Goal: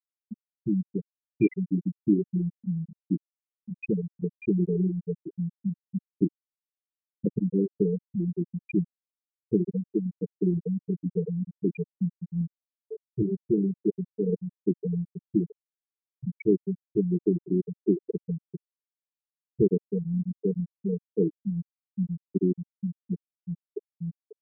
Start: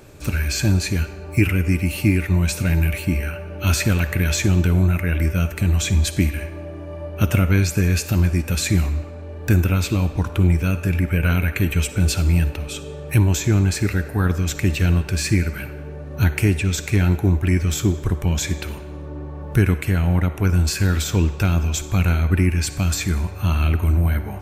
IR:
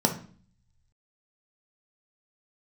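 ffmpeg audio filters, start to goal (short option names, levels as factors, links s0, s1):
-filter_complex "[0:a]highpass=f=170:w=0.5412,highpass=f=170:w=1.3066,equalizer=f=260:t=q:w=4:g=-6,equalizer=f=440:t=q:w=4:g=7,equalizer=f=670:t=q:w=4:g=-5,equalizer=f=1400:t=q:w=4:g=-9,lowpass=f=6900:w=0.5412,lowpass=f=6900:w=1.3066,acrossover=split=3600[s0][s1];[s0]adelay=30[s2];[s2][s1]amix=inputs=2:normalize=0,afftfilt=real='re*gte(hypot(re,im),0.398)':imag='im*gte(hypot(re,im),0.398)':win_size=1024:overlap=0.75"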